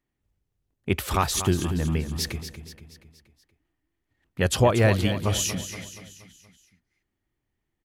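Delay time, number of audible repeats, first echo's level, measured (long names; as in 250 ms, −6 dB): 237 ms, 5, −11.0 dB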